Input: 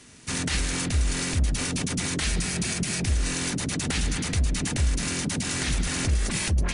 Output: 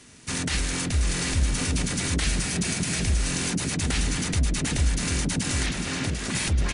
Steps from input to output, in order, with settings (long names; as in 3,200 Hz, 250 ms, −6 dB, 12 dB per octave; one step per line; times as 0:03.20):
0:05.66–0:06.35: band-pass filter 100–4,700 Hz
single-tap delay 744 ms −6 dB